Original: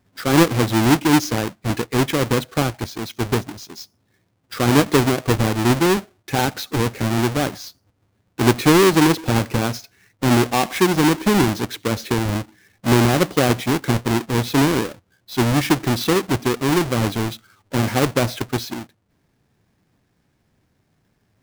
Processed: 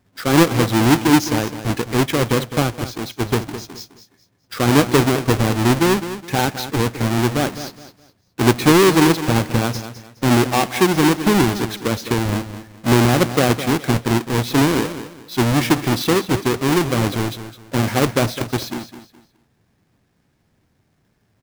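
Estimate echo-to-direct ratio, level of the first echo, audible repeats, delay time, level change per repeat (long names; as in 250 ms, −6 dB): −11.5 dB, −12.0 dB, 3, 209 ms, −11.0 dB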